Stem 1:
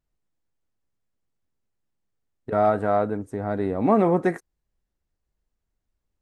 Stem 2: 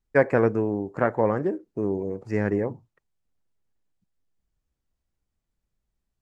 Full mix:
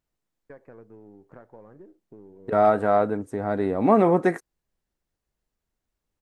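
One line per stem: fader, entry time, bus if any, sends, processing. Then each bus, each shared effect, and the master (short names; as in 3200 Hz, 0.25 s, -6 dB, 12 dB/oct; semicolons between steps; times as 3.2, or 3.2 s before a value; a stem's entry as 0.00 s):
+2.0 dB, 0.00 s, no send, low shelf 110 Hz -9 dB
-12.5 dB, 0.35 s, no send, half-wave gain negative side -3 dB; high shelf 2800 Hz -12 dB; compressor 6:1, threshold -32 dBFS, peak gain reduction 15.5 dB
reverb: off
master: dry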